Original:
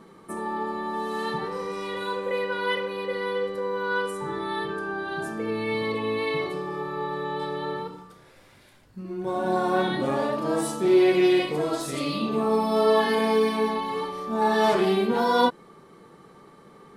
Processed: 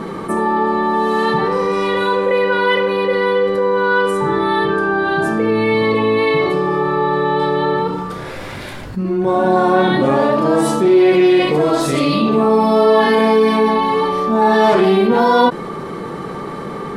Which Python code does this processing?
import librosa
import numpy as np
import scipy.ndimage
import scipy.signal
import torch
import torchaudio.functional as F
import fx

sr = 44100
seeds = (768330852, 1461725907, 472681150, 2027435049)

y = fx.high_shelf(x, sr, hz=4500.0, db=-9.5)
y = fx.env_flatten(y, sr, amount_pct=50)
y = F.gain(torch.from_numpy(y), 6.5).numpy()